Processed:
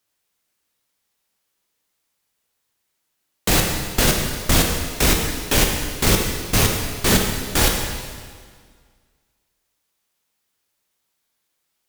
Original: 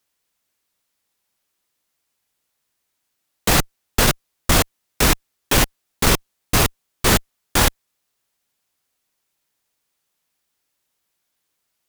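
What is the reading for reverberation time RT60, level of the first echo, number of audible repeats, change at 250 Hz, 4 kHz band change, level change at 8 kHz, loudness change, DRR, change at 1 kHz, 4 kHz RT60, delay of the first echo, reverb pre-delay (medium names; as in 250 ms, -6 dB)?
1.8 s, no echo, no echo, +1.0 dB, +0.5 dB, +0.5 dB, 0.0 dB, 1.0 dB, -3.0 dB, 1.7 s, no echo, 7 ms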